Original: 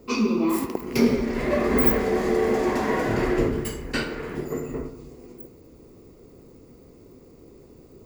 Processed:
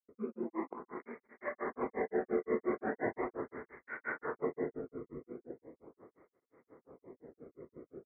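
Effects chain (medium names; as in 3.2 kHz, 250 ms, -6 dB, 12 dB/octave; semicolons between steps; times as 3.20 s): steep low-pass 2.1 kHz 96 dB/octave; bass shelf 380 Hz -4 dB; compression 12:1, threshold -30 dBFS, peak gain reduction 14.5 dB; granulator 153 ms, grains 5.7 per s, pitch spread up and down by 0 st; level rider gain up to 5 dB; expander -55 dBFS; cancelling through-zero flanger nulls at 0.39 Hz, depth 1.3 ms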